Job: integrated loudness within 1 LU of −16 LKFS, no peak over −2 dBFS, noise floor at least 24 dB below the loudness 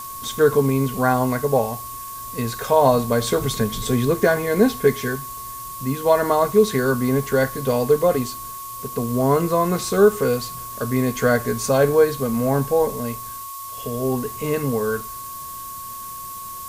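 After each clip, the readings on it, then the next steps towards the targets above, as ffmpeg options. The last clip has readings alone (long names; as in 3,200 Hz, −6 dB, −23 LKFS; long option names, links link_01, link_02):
interfering tone 1,100 Hz; level of the tone −33 dBFS; background noise floor −34 dBFS; target noise floor −45 dBFS; integrated loudness −20.5 LKFS; sample peak −4.0 dBFS; target loudness −16.0 LKFS
→ -af "bandreject=frequency=1100:width=30"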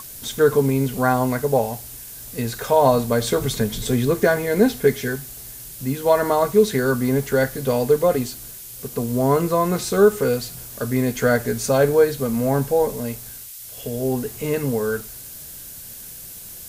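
interfering tone none found; background noise floor −38 dBFS; target noise floor −45 dBFS
→ -af "afftdn=noise_reduction=7:noise_floor=-38"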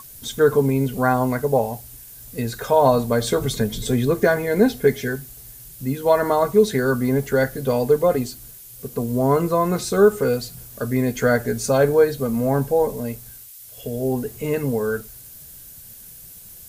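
background noise floor −42 dBFS; target noise floor −45 dBFS
→ -af "afftdn=noise_reduction=6:noise_floor=-42"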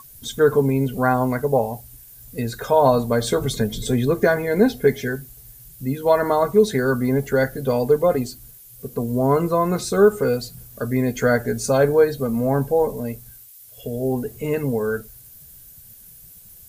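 background noise floor −45 dBFS; integrated loudness −20.5 LKFS; sample peak −4.0 dBFS; target loudness −16.0 LKFS
→ -af "volume=4.5dB,alimiter=limit=-2dB:level=0:latency=1"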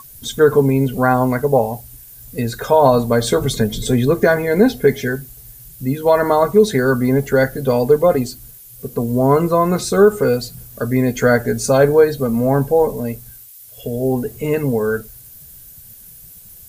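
integrated loudness −16.5 LKFS; sample peak −2.0 dBFS; background noise floor −41 dBFS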